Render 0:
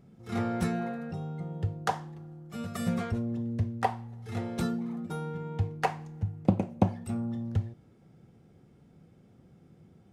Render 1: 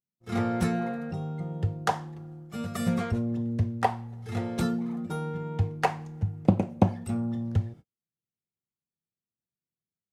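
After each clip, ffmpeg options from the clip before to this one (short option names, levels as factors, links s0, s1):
-af "agate=range=0.00501:threshold=0.00447:ratio=16:detection=peak,volume=1.41"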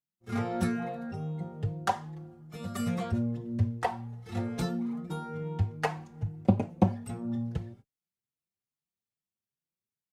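-filter_complex "[0:a]asplit=2[s0][s1];[s1]adelay=4.3,afreqshift=2.4[s2];[s0][s2]amix=inputs=2:normalize=1"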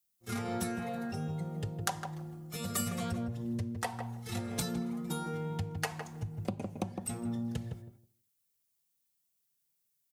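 -filter_complex "[0:a]acompressor=threshold=0.02:ratio=6,crystalizer=i=4:c=0,asplit=2[s0][s1];[s1]adelay=159,lowpass=f=1000:p=1,volume=0.631,asplit=2[s2][s3];[s3]adelay=159,lowpass=f=1000:p=1,volume=0.16,asplit=2[s4][s5];[s5]adelay=159,lowpass=f=1000:p=1,volume=0.16[s6];[s2][s4][s6]amix=inputs=3:normalize=0[s7];[s0][s7]amix=inputs=2:normalize=0"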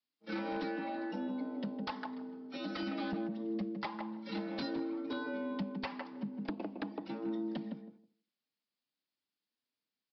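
-af "afreqshift=99,aeval=exprs='0.0398*(abs(mod(val(0)/0.0398+3,4)-2)-1)':c=same,aresample=11025,aresample=44100,volume=0.841"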